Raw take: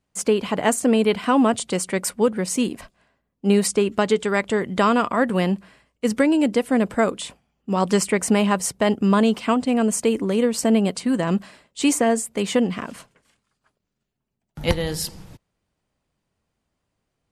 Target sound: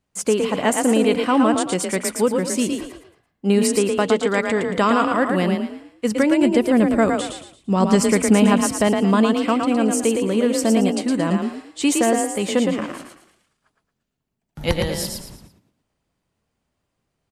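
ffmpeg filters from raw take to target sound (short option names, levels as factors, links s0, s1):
-filter_complex "[0:a]asettb=1/sr,asplit=3[s0][s1][s2];[s0]atrim=end=6.424[s3];[s1]atrim=start=6.42:end=8.88,asetpts=PTS-STARTPTS,afade=t=in:d=0.004:c=qsin,afade=t=out:st=2.456:d=0.004:c=qsin,lowshelf=f=180:g=9.5[s4];[s2]atrim=start=8.876[s5];[s3][s4]acrossfade=d=0.004:c1=hsin:c2=qsin[s6];[s6][s5]acrossfade=d=0.004:c1=qsin:c2=hsin,asplit=5[s7][s8][s9][s10][s11];[s8]adelay=113,afreqshift=32,volume=0.596[s12];[s9]adelay=226,afreqshift=64,volume=0.202[s13];[s10]adelay=339,afreqshift=96,volume=0.0692[s14];[s11]adelay=452,afreqshift=128,volume=0.0234[s15];[s7][s12][s13][s14][s15]amix=inputs=5:normalize=0"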